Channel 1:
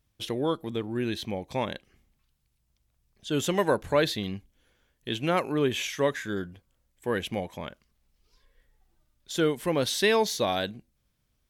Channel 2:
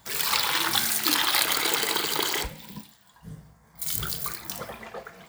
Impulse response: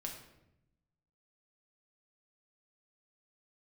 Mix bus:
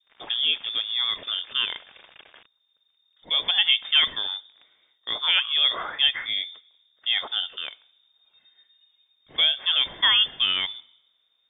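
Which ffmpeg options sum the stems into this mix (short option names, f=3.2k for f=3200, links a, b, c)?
-filter_complex "[0:a]adynamicequalizer=threshold=0.00708:dfrequency=2900:dqfactor=1.1:tfrequency=2900:tqfactor=1.1:attack=5:release=100:ratio=0.375:range=2.5:mode=boostabove:tftype=bell,volume=2.5dB,asplit=2[a][b];[b]volume=-16.5dB[c];[1:a]alimiter=limit=-13.5dB:level=0:latency=1:release=38,acrusher=bits=3:mix=0:aa=0.000001,volume=-18dB[d];[2:a]atrim=start_sample=2205[e];[c][e]afir=irnorm=-1:irlink=0[f];[a][d][f]amix=inputs=3:normalize=0,acrossover=split=2500[g][h];[h]acompressor=threshold=-39dB:ratio=4:attack=1:release=60[i];[g][i]amix=inputs=2:normalize=0,lowpass=f=3.1k:t=q:w=0.5098,lowpass=f=3.1k:t=q:w=0.6013,lowpass=f=3.1k:t=q:w=0.9,lowpass=f=3.1k:t=q:w=2.563,afreqshift=-3700"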